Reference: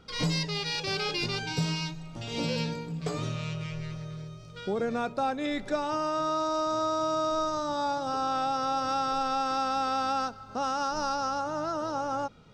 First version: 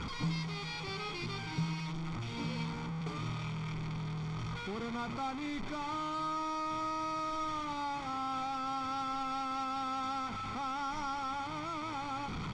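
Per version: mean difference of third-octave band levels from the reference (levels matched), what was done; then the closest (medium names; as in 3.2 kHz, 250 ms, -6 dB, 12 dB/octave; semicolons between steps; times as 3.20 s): 5.5 dB: one-bit delta coder 64 kbps, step -26 dBFS; distance through air 160 m; comb 0.9 ms, depth 64%; trim -8.5 dB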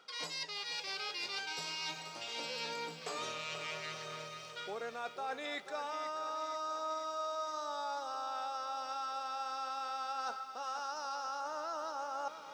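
8.5 dB: high-pass 680 Hz 12 dB/octave; reverse; compression 6:1, threshold -45 dBFS, peak gain reduction 17 dB; reverse; bit-crushed delay 485 ms, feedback 55%, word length 12-bit, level -10.5 dB; trim +6.5 dB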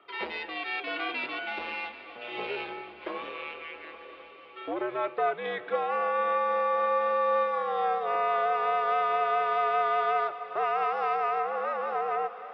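13.0 dB: valve stage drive 22 dB, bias 0.65; multi-head delay 258 ms, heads first and third, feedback 70%, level -18 dB; mistuned SSB -97 Hz 520–3100 Hz; trim +6 dB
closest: first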